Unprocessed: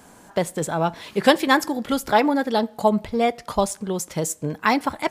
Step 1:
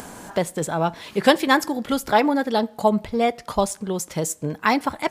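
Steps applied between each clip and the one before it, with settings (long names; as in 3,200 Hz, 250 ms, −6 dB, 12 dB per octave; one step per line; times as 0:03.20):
upward compression, threshold −29 dBFS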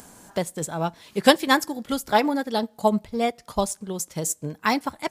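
bass and treble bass +3 dB, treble +7 dB
expander for the loud parts 1.5 to 1, over −33 dBFS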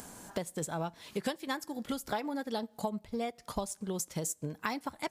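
downward compressor 8 to 1, threshold −31 dBFS, peak gain reduction 21 dB
level −1 dB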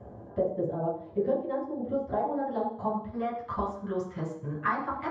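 low-pass filter sweep 590 Hz → 1,300 Hz, 0:01.85–0:03.13
convolution reverb RT60 0.55 s, pre-delay 3 ms, DRR −5 dB
level −4.5 dB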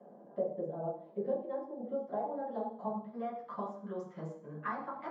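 Chebyshev high-pass with heavy ripple 150 Hz, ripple 6 dB
level −5.5 dB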